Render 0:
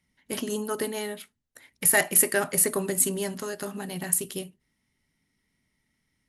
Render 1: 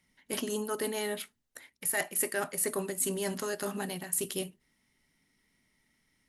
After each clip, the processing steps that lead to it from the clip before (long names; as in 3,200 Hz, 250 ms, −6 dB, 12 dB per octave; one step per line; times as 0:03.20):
parametric band 85 Hz −7 dB 2.2 octaves
reversed playback
downward compressor 4 to 1, threshold −34 dBFS, peak gain reduction 16 dB
reversed playback
level +3.5 dB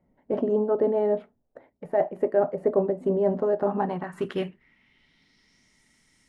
low-pass filter sweep 630 Hz → 7,700 Hz, 0:03.47–0:05.83
level +7.5 dB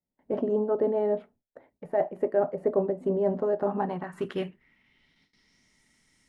noise gate with hold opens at −54 dBFS
level −2.5 dB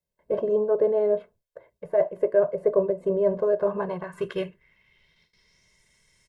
comb filter 1.9 ms, depth 97%